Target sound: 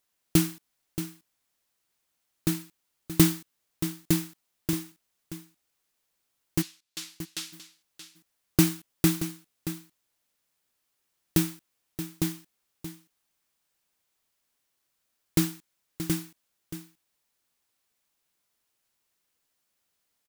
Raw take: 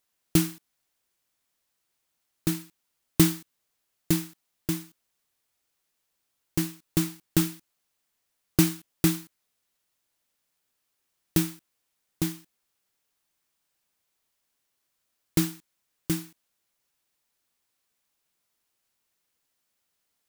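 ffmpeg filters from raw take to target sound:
ffmpeg -i in.wav -filter_complex "[0:a]asplit=3[link_01][link_02][link_03];[link_01]afade=type=out:start_time=6.61:duration=0.02[link_04];[link_02]bandpass=frequency=4200:width_type=q:width=1.1:csg=0,afade=type=in:start_time=6.61:duration=0.02,afade=type=out:start_time=7.52:duration=0.02[link_05];[link_03]afade=type=in:start_time=7.52:duration=0.02[link_06];[link_04][link_05][link_06]amix=inputs=3:normalize=0,asplit=2[link_07][link_08];[link_08]aecho=0:1:627:0.266[link_09];[link_07][link_09]amix=inputs=2:normalize=0" out.wav

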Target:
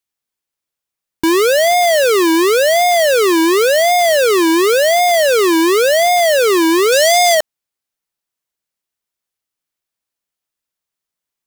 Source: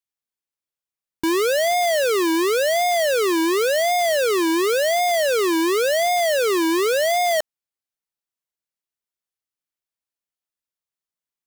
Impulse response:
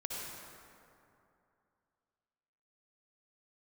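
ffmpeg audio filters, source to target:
-filter_complex "[0:a]asettb=1/sr,asplit=3[link_01][link_02][link_03];[link_01]atrim=end=6.924[link_04];[link_02]atrim=start=6.92:end=7.35,asetpts=PTS-STARTPTS,afade=type=in:duration=0.004:curve=qsin,afade=type=out:start_time=0.426:duration=0.004:curve=qsin,equalizer=frequency=6100:width_type=o:width=1.8:gain=7.5[link_05];[link_03]atrim=start=7.346[link_06];[link_04][link_05]acrossfade=duration=0.004:curve1=hsin:curve2=qsin[link_07];[link_07][link_06]acrossfade=duration=0.004:curve1=qsin:curve2=hsin,volume=7.5dB"

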